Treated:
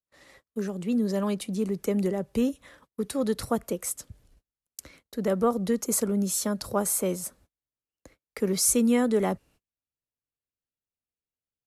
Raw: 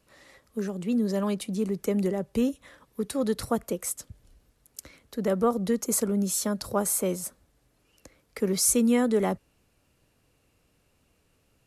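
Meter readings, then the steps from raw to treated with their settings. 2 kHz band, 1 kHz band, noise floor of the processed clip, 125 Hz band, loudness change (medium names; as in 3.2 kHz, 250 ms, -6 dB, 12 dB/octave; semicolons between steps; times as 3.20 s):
0.0 dB, 0.0 dB, under -85 dBFS, 0.0 dB, 0.0 dB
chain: gate -55 dBFS, range -34 dB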